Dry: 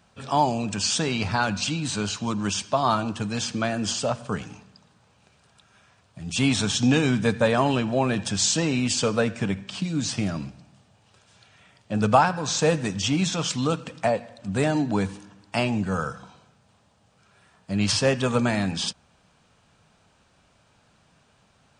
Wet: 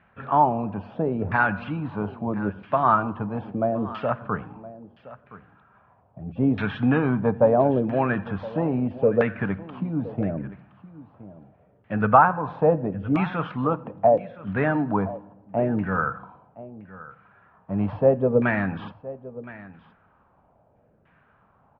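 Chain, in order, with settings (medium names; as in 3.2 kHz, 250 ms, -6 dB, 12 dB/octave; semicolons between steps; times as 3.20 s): low-pass 3.3 kHz 24 dB/octave; LFO low-pass saw down 0.76 Hz 450–2000 Hz; on a send: delay 1018 ms -17.5 dB; on the sum: trim -1 dB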